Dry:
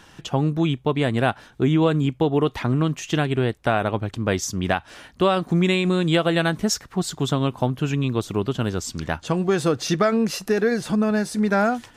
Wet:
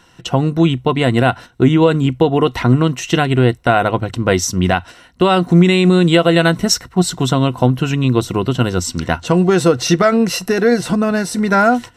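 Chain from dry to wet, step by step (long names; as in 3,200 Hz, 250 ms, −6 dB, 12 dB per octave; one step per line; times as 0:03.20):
noise gate −37 dBFS, range −9 dB
EQ curve with evenly spaced ripples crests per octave 2, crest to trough 8 dB
boost into a limiter +8.5 dB
level −1 dB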